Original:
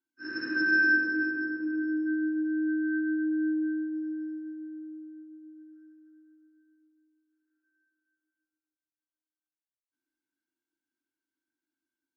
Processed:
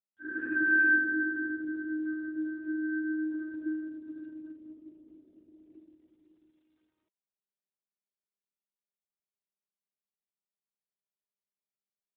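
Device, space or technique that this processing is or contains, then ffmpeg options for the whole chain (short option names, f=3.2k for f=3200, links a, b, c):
mobile call with aggressive noise cancelling: -af "highpass=140,afftdn=nr=32:nf=-47" -ar 8000 -c:a libopencore_amrnb -b:a 12200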